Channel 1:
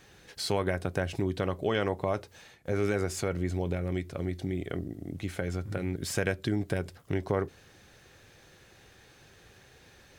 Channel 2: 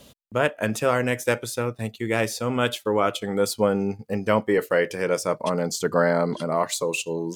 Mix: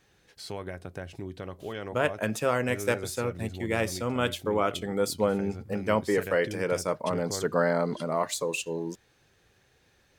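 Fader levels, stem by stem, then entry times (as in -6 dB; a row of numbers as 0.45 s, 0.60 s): -8.5 dB, -4.5 dB; 0.00 s, 1.60 s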